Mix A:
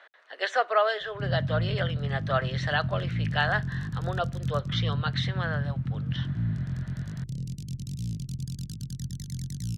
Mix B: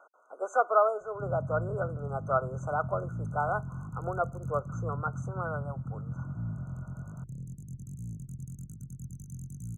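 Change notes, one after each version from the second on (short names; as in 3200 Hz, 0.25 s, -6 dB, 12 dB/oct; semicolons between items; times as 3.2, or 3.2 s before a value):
background -7.0 dB; master: add brick-wall FIR band-stop 1500–6100 Hz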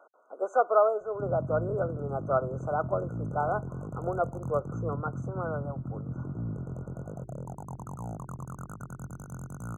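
speech: add tilt shelf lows +7.5 dB, about 900 Hz; background: remove Chebyshev band-stop 160–5500 Hz, order 2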